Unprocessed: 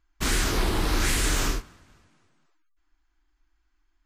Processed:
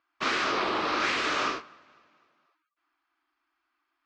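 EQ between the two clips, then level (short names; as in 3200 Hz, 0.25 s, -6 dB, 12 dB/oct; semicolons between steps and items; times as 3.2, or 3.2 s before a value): air absorption 66 m; speaker cabinet 340–5400 Hz, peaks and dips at 590 Hz +5 dB, 1200 Hz +9 dB, 2500 Hz +4 dB; 0.0 dB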